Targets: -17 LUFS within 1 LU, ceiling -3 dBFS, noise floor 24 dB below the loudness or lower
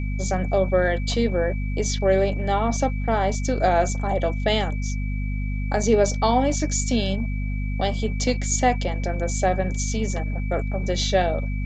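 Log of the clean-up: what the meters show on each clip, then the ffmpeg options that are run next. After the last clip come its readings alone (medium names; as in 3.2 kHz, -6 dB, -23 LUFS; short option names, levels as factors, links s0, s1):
hum 50 Hz; highest harmonic 250 Hz; hum level -23 dBFS; steady tone 2.3 kHz; tone level -39 dBFS; loudness -23.5 LUFS; peak level -6.0 dBFS; loudness target -17.0 LUFS
-> -af "bandreject=f=50:t=h:w=4,bandreject=f=100:t=h:w=4,bandreject=f=150:t=h:w=4,bandreject=f=200:t=h:w=4,bandreject=f=250:t=h:w=4"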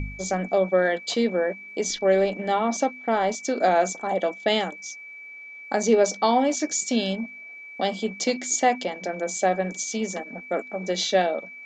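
hum not found; steady tone 2.3 kHz; tone level -39 dBFS
-> -af "bandreject=f=2300:w=30"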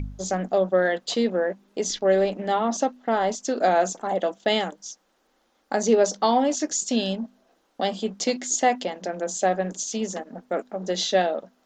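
steady tone not found; loudness -24.5 LUFS; peak level -7.0 dBFS; loudness target -17.0 LUFS
-> -af "volume=2.37,alimiter=limit=0.708:level=0:latency=1"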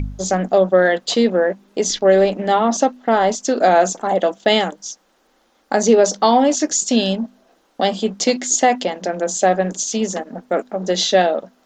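loudness -17.5 LUFS; peak level -3.0 dBFS; noise floor -60 dBFS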